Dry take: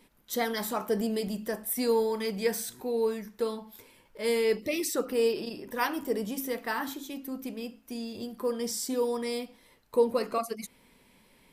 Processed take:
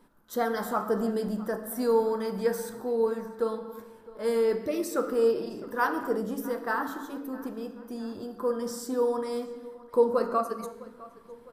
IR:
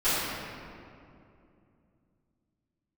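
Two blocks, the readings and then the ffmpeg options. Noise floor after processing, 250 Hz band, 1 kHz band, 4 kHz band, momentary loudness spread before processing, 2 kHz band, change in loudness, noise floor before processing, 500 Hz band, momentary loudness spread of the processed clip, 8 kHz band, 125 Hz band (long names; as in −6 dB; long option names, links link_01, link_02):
−53 dBFS, +1.0 dB, +4.0 dB, −8.0 dB, 12 LU, 0.0 dB, +1.5 dB, −63 dBFS, +2.0 dB, 14 LU, −6.5 dB, can't be measured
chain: -filter_complex "[0:a]highshelf=frequency=1800:width_type=q:width=3:gain=-7,asplit=2[link_01][link_02];[link_02]adelay=658,lowpass=frequency=4300:poles=1,volume=-19.5dB,asplit=2[link_03][link_04];[link_04]adelay=658,lowpass=frequency=4300:poles=1,volume=0.55,asplit=2[link_05][link_06];[link_06]adelay=658,lowpass=frequency=4300:poles=1,volume=0.55,asplit=2[link_07][link_08];[link_08]adelay=658,lowpass=frequency=4300:poles=1,volume=0.55[link_09];[link_01][link_03][link_05][link_07][link_09]amix=inputs=5:normalize=0,asplit=2[link_10][link_11];[1:a]atrim=start_sample=2205,afade=type=out:start_time=0.36:duration=0.01,atrim=end_sample=16317[link_12];[link_11][link_12]afir=irnorm=-1:irlink=0,volume=-21.5dB[link_13];[link_10][link_13]amix=inputs=2:normalize=0"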